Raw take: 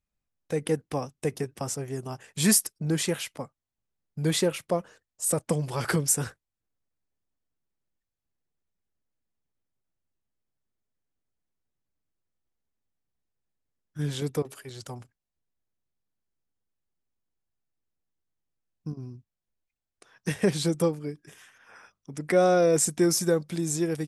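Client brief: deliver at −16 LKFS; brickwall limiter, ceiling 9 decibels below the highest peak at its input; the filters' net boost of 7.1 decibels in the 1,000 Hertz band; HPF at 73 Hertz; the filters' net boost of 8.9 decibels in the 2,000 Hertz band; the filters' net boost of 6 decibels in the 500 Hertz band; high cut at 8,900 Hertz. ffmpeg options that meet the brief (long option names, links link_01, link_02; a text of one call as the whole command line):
ffmpeg -i in.wav -af "highpass=73,lowpass=8900,equalizer=frequency=500:width_type=o:gain=5,equalizer=frequency=1000:width_type=o:gain=6,equalizer=frequency=2000:width_type=o:gain=9,volume=10dB,alimiter=limit=-3.5dB:level=0:latency=1" out.wav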